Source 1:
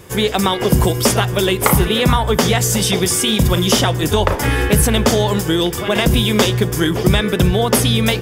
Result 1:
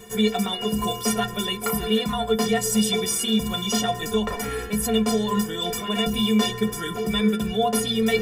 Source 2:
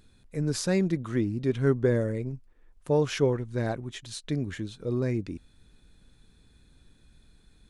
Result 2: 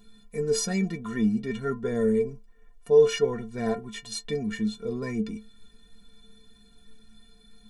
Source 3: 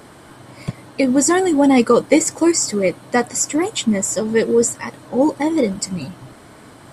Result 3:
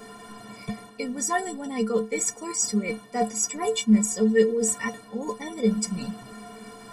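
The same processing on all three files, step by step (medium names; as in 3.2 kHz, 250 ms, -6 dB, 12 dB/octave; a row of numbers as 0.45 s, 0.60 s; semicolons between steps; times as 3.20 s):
reverse; compression 5:1, threshold -23 dBFS; reverse; inharmonic resonator 210 Hz, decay 0.26 s, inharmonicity 0.03; peak normalisation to -9 dBFS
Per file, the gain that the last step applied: +13.5 dB, +16.0 dB, +12.0 dB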